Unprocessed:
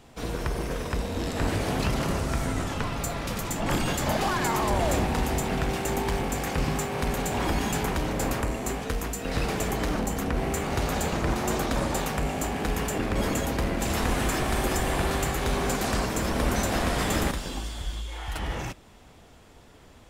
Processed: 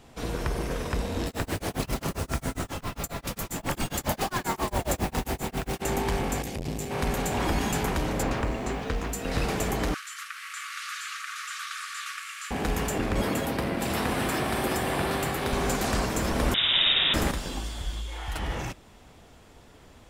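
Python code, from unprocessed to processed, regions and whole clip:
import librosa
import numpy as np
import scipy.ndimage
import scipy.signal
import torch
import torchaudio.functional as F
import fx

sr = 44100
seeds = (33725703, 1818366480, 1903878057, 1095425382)

y = fx.chain(x, sr, fx.high_shelf(hz=10000.0, db=8.5),
    fx.mod_noise(seeds[0], snr_db=18),
    fx.tremolo(hz=7.4, depth=0.99), at=(1.26, 5.82))
y = fx.chain(y, sr, fx.peak_eq(hz=1200.0, db=-13.5, octaves=1.5),
    fx.clip_hard(threshold_db=-19.5),
    fx.transformer_sat(knee_hz=280.0), at=(6.42, 6.91))
y = fx.lowpass(y, sr, hz=4900.0, slope=12, at=(8.22, 9.11), fade=0.02)
y = fx.dmg_noise_colour(y, sr, seeds[1], colour='pink', level_db=-55.0, at=(8.22, 9.11), fade=0.02)
y = fx.chain(y, sr, fx.delta_mod(bps=64000, step_db=-41.5),
    fx.brickwall_highpass(low_hz=1100.0), at=(9.94, 12.51))
y = fx.chain(y, sr, fx.highpass(hz=100.0, slope=12),
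    fx.peak_eq(hz=6700.0, db=-8.0, octaves=0.38), at=(13.22, 15.53))
y = fx.chain(y, sr, fx.room_flutter(wall_m=8.7, rt60_s=0.89),
    fx.freq_invert(carrier_hz=3700), at=(16.54, 17.14))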